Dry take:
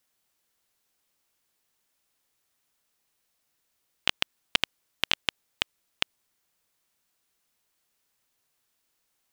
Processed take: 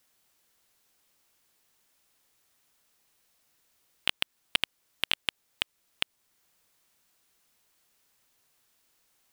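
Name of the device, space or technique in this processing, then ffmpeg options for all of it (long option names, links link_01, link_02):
limiter into clipper: -af "alimiter=limit=-8dB:level=0:latency=1:release=415,asoftclip=type=hard:threshold=-13dB,volume=5.5dB"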